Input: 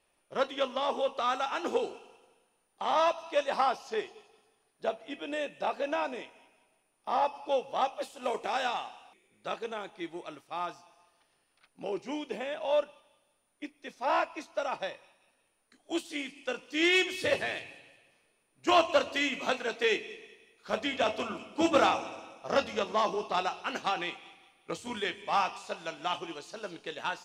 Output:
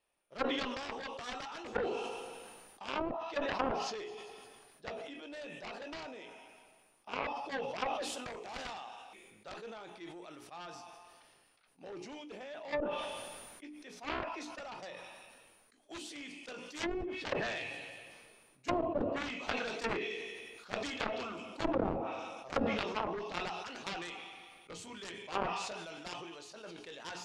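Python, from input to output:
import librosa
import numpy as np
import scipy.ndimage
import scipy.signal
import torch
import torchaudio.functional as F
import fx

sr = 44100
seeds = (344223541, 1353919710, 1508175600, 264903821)

y = fx.hum_notches(x, sr, base_hz=60, count=7)
y = fx.doubler(y, sr, ms=17.0, db=-13.5)
y = fx.cheby_harmonics(y, sr, harmonics=(7,), levels_db=(-13,), full_scale_db=-11.0)
y = fx.env_lowpass_down(y, sr, base_hz=420.0, full_db=-24.0)
y = fx.sustainer(y, sr, db_per_s=28.0)
y = y * librosa.db_to_amplitude(-4.0)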